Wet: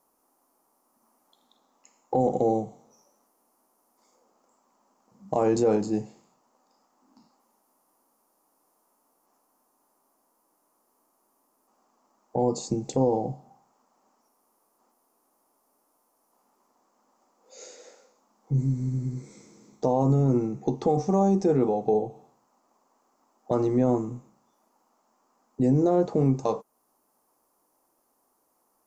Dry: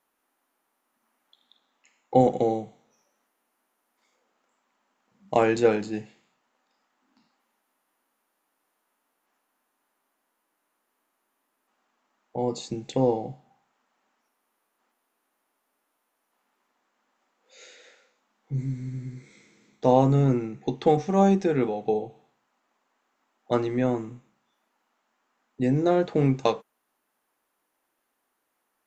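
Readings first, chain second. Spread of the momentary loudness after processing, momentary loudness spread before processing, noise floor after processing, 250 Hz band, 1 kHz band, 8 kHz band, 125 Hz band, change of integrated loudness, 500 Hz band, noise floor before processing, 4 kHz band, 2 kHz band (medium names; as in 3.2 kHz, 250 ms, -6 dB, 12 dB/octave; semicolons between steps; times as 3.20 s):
12 LU, 14 LU, -71 dBFS, +0.5 dB, -2.5 dB, no reading, +0.5 dB, -1.0 dB, -1.0 dB, -77 dBFS, -6.5 dB, under -10 dB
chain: high-order bell 2.4 kHz -14 dB; in parallel at -1 dB: compression, threshold -35 dBFS, peak gain reduction 20 dB; on the sum: peak limiter -15.5 dBFS, peak gain reduction 10 dB; trim +2 dB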